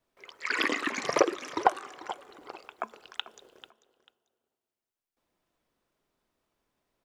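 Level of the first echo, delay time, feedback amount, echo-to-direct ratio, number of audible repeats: -16.0 dB, 0.442 s, 25%, -16.0 dB, 2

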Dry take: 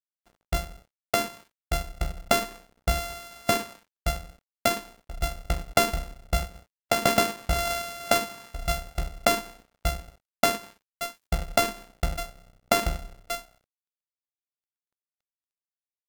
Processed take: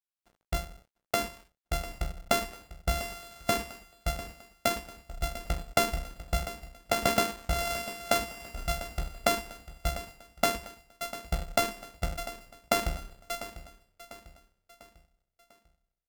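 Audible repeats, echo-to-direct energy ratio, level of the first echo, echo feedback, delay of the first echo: 3, -13.5 dB, -14.5 dB, 45%, 0.697 s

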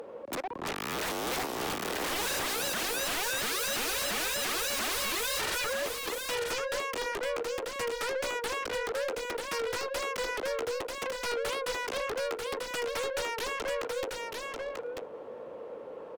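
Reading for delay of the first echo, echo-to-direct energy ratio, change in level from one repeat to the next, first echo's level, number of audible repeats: 0.94 s, -4.5 dB, no steady repeat, -4.5 dB, 1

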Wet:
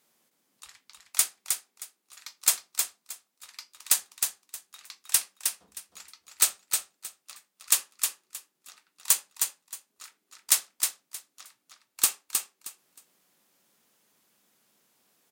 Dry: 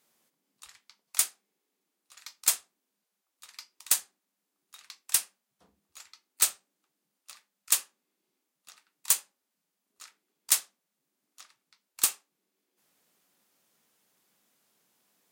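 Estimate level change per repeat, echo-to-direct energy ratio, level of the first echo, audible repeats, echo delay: -13.5 dB, -5.0 dB, -5.0 dB, 3, 0.313 s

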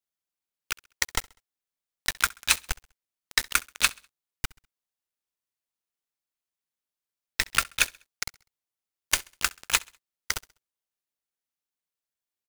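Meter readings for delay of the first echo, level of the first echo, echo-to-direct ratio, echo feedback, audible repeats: 66 ms, -24.0 dB, -23.0 dB, 41%, 2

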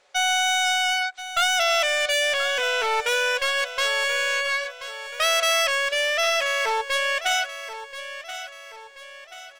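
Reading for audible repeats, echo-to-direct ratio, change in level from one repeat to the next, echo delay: 4, -11.5 dB, -7.0 dB, 1.031 s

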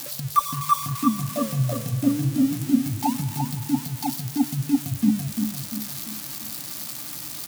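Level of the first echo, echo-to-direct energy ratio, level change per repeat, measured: -6.0 dB, -5.0 dB, -7.0 dB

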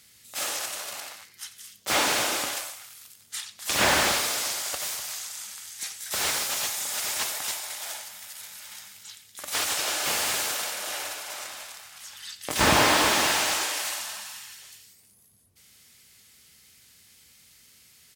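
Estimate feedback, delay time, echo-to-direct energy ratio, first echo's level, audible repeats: no steady repeat, 90 ms, -16.0 dB, -16.0 dB, 1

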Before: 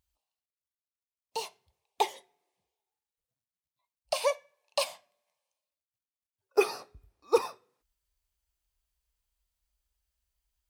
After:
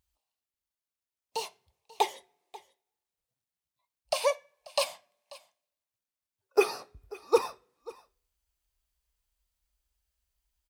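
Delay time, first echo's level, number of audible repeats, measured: 0.538 s, -20.5 dB, 1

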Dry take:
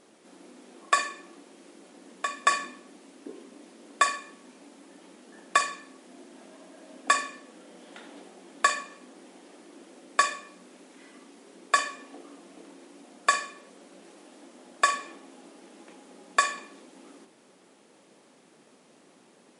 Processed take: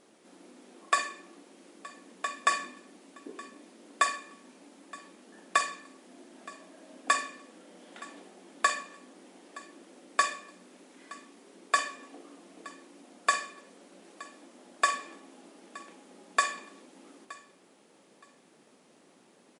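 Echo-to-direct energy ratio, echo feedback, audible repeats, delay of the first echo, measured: -20.0 dB, 23%, 2, 0.92 s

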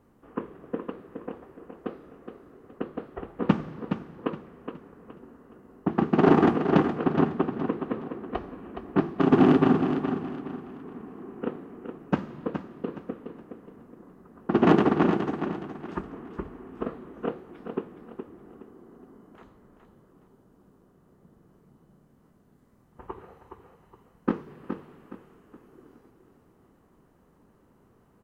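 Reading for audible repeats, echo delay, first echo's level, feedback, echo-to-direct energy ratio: 3, 0.418 s, -8.0 dB, 33%, -7.5 dB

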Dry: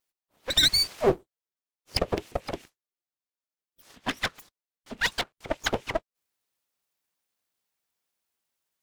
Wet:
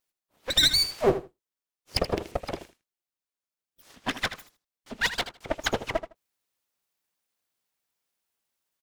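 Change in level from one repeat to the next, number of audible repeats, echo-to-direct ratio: -16.0 dB, 2, -12.0 dB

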